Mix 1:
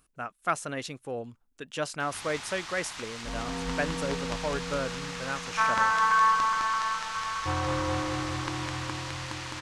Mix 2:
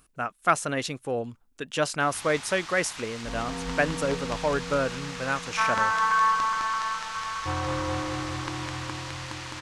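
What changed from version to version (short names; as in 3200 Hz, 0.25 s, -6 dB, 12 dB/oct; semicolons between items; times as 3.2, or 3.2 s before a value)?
speech +6.0 dB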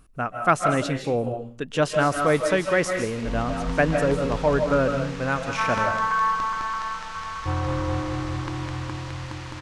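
speech: send on; master: add tilt -2 dB/oct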